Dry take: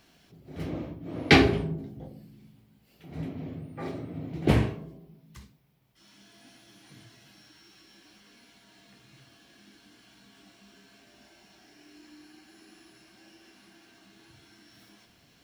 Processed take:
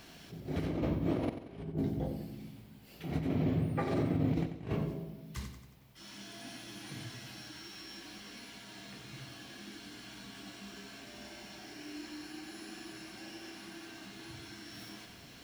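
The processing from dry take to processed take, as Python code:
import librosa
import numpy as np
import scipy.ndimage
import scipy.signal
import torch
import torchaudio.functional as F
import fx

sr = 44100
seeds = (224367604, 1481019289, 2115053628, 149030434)

p1 = fx.over_compress(x, sr, threshold_db=-37.0, ratio=-0.5)
p2 = p1 + fx.echo_feedback(p1, sr, ms=91, feedback_pct=51, wet_db=-10.0, dry=0)
p3 = fx.attack_slew(p2, sr, db_per_s=290.0)
y = F.gain(torch.from_numpy(p3), 1.0).numpy()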